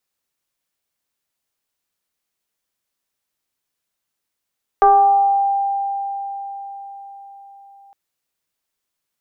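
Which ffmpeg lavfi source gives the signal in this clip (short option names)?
-f lavfi -i "aevalsrc='0.447*pow(10,-3*t/4.97)*sin(2*PI*794*t+0.89*pow(10,-3*t/1.08)*sin(2*PI*0.49*794*t))':d=3.11:s=44100"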